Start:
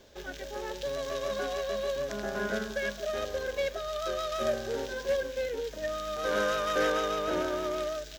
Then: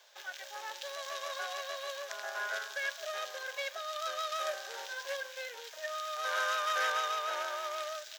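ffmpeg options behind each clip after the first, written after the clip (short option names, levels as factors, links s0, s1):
-af "highpass=f=770:w=0.5412,highpass=f=770:w=1.3066"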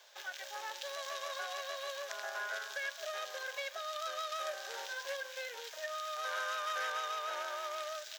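-af "acompressor=threshold=0.01:ratio=2,volume=1.12"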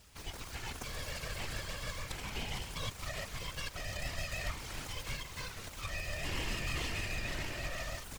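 -af "aeval=exprs='abs(val(0))':c=same,afftfilt=real='hypot(re,im)*cos(2*PI*random(0))':imag='hypot(re,im)*sin(2*PI*random(1))':win_size=512:overlap=0.75,volume=2.66"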